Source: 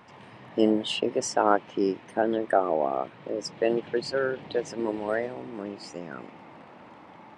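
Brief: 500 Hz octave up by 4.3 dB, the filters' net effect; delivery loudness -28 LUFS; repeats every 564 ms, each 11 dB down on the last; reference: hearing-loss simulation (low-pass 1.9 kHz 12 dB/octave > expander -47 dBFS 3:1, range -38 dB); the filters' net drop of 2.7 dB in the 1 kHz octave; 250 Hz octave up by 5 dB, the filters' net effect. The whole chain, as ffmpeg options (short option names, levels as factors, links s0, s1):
-af "lowpass=1900,equalizer=f=250:t=o:g=5,equalizer=f=500:t=o:g=6,equalizer=f=1000:t=o:g=-8,aecho=1:1:564|1128|1692:0.282|0.0789|0.0221,agate=range=0.0126:threshold=0.00447:ratio=3,volume=0.631"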